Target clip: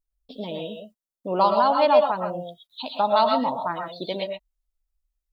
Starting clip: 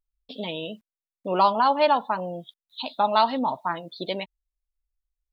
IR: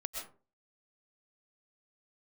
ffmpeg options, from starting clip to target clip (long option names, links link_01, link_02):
-filter_complex "[0:a]asetnsamples=nb_out_samples=441:pad=0,asendcmd='1.41 equalizer g -4',equalizer=frequency=2200:width_type=o:width=1.7:gain=-10.5[link_01];[1:a]atrim=start_sample=2205,atrim=end_sample=6174[link_02];[link_01][link_02]afir=irnorm=-1:irlink=0,volume=3dB"